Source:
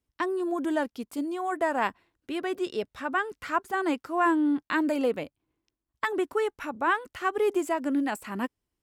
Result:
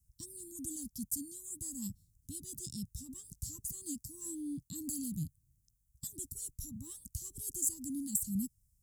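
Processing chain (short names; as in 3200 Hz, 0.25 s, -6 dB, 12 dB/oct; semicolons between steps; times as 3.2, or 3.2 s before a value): inverse Chebyshev band-stop 430–2500 Hz, stop band 60 dB; gain +13.5 dB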